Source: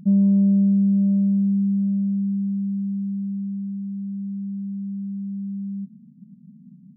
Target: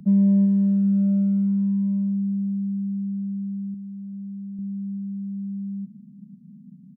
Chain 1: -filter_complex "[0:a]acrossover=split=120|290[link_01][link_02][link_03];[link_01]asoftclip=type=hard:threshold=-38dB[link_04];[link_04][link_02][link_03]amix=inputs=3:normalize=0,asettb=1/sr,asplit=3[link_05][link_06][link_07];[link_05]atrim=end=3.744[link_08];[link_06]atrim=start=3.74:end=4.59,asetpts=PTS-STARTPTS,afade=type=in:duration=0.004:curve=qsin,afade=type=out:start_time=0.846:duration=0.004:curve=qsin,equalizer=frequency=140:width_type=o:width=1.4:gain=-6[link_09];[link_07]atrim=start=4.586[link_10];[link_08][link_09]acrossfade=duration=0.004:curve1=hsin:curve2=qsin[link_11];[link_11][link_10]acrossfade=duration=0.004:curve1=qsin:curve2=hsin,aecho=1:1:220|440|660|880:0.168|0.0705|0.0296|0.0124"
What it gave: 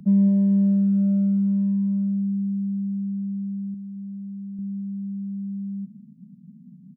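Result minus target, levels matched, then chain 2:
echo 167 ms early
-filter_complex "[0:a]acrossover=split=120|290[link_01][link_02][link_03];[link_01]asoftclip=type=hard:threshold=-38dB[link_04];[link_04][link_02][link_03]amix=inputs=3:normalize=0,asettb=1/sr,asplit=3[link_05][link_06][link_07];[link_05]atrim=end=3.744[link_08];[link_06]atrim=start=3.74:end=4.59,asetpts=PTS-STARTPTS,afade=type=in:duration=0.004:curve=qsin,afade=type=out:start_time=0.846:duration=0.004:curve=qsin,equalizer=frequency=140:width_type=o:width=1.4:gain=-6[link_09];[link_07]atrim=start=4.586[link_10];[link_08][link_09]acrossfade=duration=0.004:curve1=hsin:curve2=qsin[link_11];[link_11][link_10]acrossfade=duration=0.004:curve1=qsin:curve2=hsin,aecho=1:1:387|774|1161|1548:0.168|0.0705|0.0296|0.0124"

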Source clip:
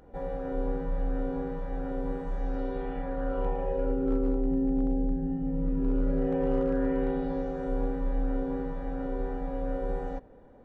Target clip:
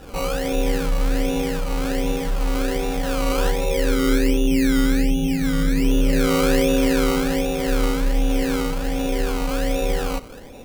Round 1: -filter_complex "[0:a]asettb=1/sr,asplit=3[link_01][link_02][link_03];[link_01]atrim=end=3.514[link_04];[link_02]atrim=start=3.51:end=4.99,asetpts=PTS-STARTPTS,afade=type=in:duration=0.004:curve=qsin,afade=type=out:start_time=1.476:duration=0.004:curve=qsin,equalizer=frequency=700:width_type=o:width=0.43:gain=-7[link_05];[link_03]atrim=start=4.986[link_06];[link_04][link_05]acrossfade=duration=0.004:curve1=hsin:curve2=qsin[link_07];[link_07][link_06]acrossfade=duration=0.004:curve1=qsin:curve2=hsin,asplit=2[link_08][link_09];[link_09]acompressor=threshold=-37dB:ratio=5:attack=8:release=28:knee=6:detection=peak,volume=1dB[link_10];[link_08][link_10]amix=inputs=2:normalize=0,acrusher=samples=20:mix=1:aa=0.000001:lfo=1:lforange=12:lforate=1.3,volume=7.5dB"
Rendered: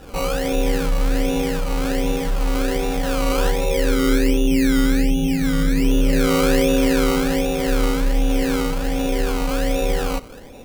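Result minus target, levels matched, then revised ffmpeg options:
downward compressor: peak gain reduction −5.5 dB
-filter_complex "[0:a]asettb=1/sr,asplit=3[link_01][link_02][link_03];[link_01]atrim=end=3.514[link_04];[link_02]atrim=start=3.51:end=4.99,asetpts=PTS-STARTPTS,afade=type=in:duration=0.004:curve=qsin,afade=type=out:start_time=1.476:duration=0.004:curve=qsin,equalizer=frequency=700:width_type=o:width=0.43:gain=-7[link_05];[link_03]atrim=start=4.986[link_06];[link_04][link_05]acrossfade=duration=0.004:curve1=hsin:curve2=qsin[link_07];[link_07][link_06]acrossfade=duration=0.004:curve1=qsin:curve2=hsin,asplit=2[link_08][link_09];[link_09]acompressor=threshold=-44dB:ratio=5:attack=8:release=28:knee=6:detection=peak,volume=1dB[link_10];[link_08][link_10]amix=inputs=2:normalize=0,acrusher=samples=20:mix=1:aa=0.000001:lfo=1:lforange=12:lforate=1.3,volume=7.5dB"

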